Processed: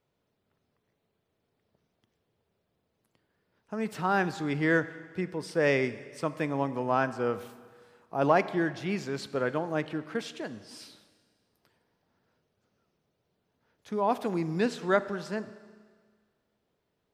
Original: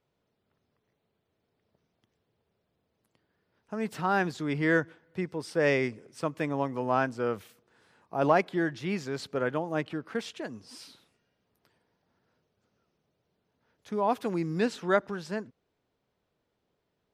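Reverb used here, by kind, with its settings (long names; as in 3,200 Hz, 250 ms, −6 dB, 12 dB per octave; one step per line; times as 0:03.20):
four-comb reverb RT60 1.7 s, combs from 29 ms, DRR 14 dB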